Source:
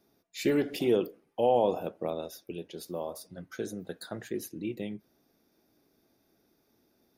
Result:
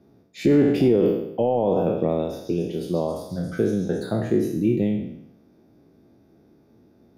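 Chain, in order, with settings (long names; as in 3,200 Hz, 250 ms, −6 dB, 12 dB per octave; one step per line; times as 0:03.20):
peak hold with a decay on every bin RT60 0.78 s
high-pass filter 90 Hz
0:01.84–0:04.04: echo through a band-pass that steps 137 ms, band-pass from 4,500 Hz, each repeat 0.7 octaves, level −1 dB
brickwall limiter −21.5 dBFS, peak gain reduction 9 dB
spectral tilt −4 dB per octave
level +6 dB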